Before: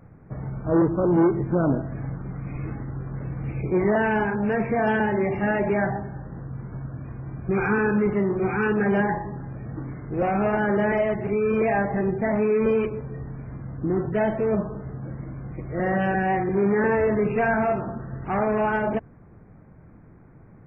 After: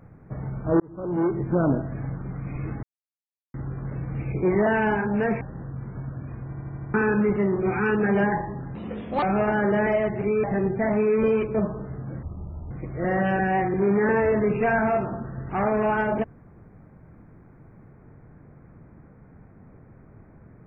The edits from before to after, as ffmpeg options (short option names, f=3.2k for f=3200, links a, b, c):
-filter_complex "[0:a]asplit=16[a][b][c][d][e][f][g][h][i][j][k][l][m][n][o][p];[a]atrim=end=0.8,asetpts=PTS-STARTPTS,afade=t=out:st=0.796:d=0.004:c=hsin[q];[b]atrim=start=0.8:end=2.83,asetpts=PTS-STARTPTS,afade=t=in:d=0.75,afade=t=out:st=2.026:d=0.004:c=hsin,apad=pad_dur=0.71[r];[c]atrim=start=2.83:end=4.702,asetpts=PTS-STARTPTS,afade=t=in:d=0.004:c=hsin[s];[d]atrim=start=6.178:end=7.312[t];[e]atrim=start=7.228:end=7.312[u];[f]atrim=start=7.228:end=7.312[v];[g]atrim=start=7.228:end=7.312[w];[h]atrim=start=7.228:end=7.312[x];[i]atrim=start=7.228:end=7.312[y];[j]atrim=start=7.708:end=9.524[z];[k]atrim=start=9.52:end=10.28,asetpts=PTS-STARTPTS,asetrate=70560,aresample=44100[aa];[l]atrim=start=10.276:end=11.492[ab];[m]atrim=start=11.858:end=12.972[ac];[n]atrim=start=14.498:end=15.184[ad];[o]atrim=start=15.18:end=15.46,asetpts=PTS-STARTPTS,asetrate=25578,aresample=44100[ae];[p]atrim=start=15.456[af];[q][r][s]concat=n=3:v=0:a=1[ag];[ag][t]acrossfade=d=0.004:c1=hsin:c2=hsin[ah];[ah][u]acrossfade=d=0.004:c1=hsin:c2=hsin[ai];[ai][v]acrossfade=d=0.004:c1=hsin:c2=hsin[aj];[aj][w]acrossfade=d=0.004:c1=hsin:c2=hsin[ak];[ak][x]acrossfade=d=0.004:c1=hsin:c2=hsin[al];[al][y]acrossfade=d=0.004:c1=hsin:c2=hsin[am];[am][z]acrossfade=d=0.004:c1=hsin:c2=hsin[an];[an][aa]acrossfade=d=0.004:c1=hsin:c2=hsin[ao];[ao][ab]acrossfade=d=0.004:c1=hsin:c2=hsin[ap];[ap][ac]acrossfade=d=0.004:c1=hsin:c2=hsin[aq];[aq][ad]acrossfade=d=0.004:c1=hsin:c2=hsin[ar];[ar][ae]acrossfade=d=0.004:c1=hsin:c2=hsin[as];[as][af]acrossfade=d=0.004:c1=hsin:c2=hsin"